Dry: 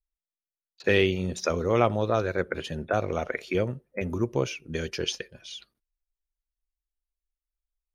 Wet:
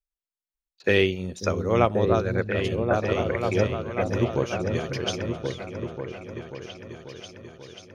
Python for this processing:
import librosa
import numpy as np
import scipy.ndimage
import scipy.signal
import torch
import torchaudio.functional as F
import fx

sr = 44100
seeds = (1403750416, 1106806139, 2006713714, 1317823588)

p1 = x + fx.echo_opening(x, sr, ms=539, hz=200, octaves=2, feedback_pct=70, wet_db=0, dry=0)
p2 = fx.upward_expand(p1, sr, threshold_db=-33.0, expansion=1.5)
y = F.gain(torch.from_numpy(p2), 2.5).numpy()